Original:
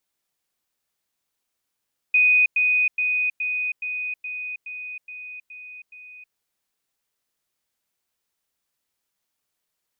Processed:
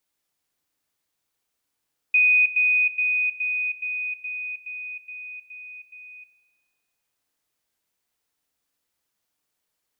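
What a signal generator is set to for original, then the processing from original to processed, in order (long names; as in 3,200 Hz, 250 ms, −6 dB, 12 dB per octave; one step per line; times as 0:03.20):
level staircase 2,490 Hz −13.5 dBFS, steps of −3 dB, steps 10, 0.32 s 0.10 s
feedback delay network reverb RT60 3.6 s, high-frequency decay 0.25×, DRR 5 dB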